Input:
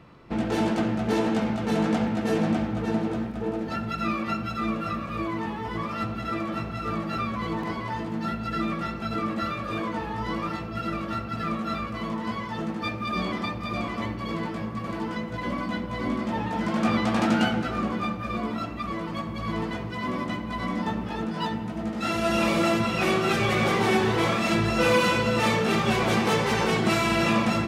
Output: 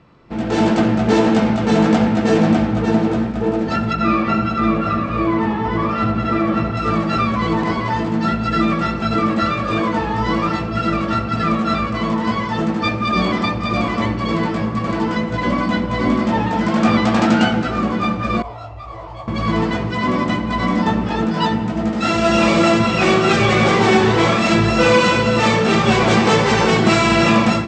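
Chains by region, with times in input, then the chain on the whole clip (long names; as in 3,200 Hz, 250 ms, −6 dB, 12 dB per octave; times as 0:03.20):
0:03.93–0:06.77: low-pass filter 2,400 Hz 6 dB per octave + single-tap delay 75 ms −7 dB
0:18.42–0:19.28: drawn EQ curve 110 Hz 0 dB, 200 Hz −29 dB, 780 Hz +1 dB, 1,500 Hz −15 dB, 2,200 Hz −12 dB + micro pitch shift up and down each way 51 cents
whole clip: Chebyshev low-pass filter 7,900 Hz, order 5; automatic gain control gain up to 11.5 dB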